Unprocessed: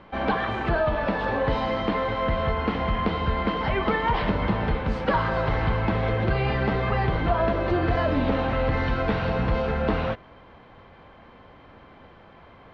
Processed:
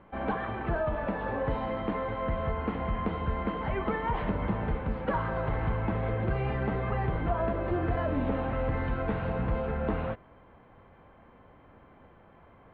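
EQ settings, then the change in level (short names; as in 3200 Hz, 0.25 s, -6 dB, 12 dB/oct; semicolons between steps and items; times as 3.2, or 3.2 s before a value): air absorption 470 m; -5.0 dB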